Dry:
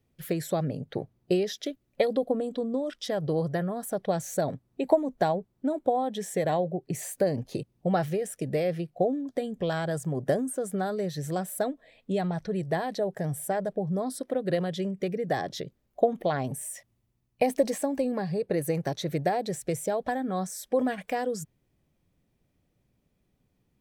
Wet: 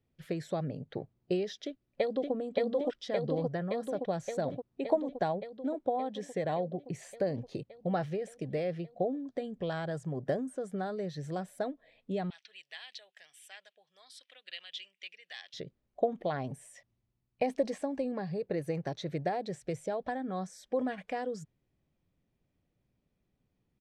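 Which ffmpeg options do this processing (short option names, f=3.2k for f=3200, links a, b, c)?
-filter_complex "[0:a]asplit=2[a][b];[b]afade=t=in:st=1.65:d=0.01,afade=t=out:st=2.33:d=0.01,aecho=0:1:570|1140|1710|2280|2850|3420|3990|4560|5130|5700|6270|6840:0.944061|0.708046|0.531034|0.398276|0.298707|0.22403|0.168023|0.126017|0.0945127|0.0708845|0.0531634|0.0398725[c];[a][c]amix=inputs=2:normalize=0,asettb=1/sr,asplit=3[d][e][f];[d]atrim=end=12.304[g];[e]atrim=start=12.3:end=15.54,asetpts=PTS-STARTPTS,afade=t=in:d=0.004:c=qsin,afade=t=out:st=3.236:d=0.004:c=qsin,highpass=f=2.8k:t=q:w=3.7[h];[f]atrim=start=15.536[i];[g][h]acrossfade=d=0.004:c1=hsin:c2=qsin[j];[j][i]acrossfade=d=0.004:c1=qsin:c2=hsin,lowpass=5.1k,volume=-6dB"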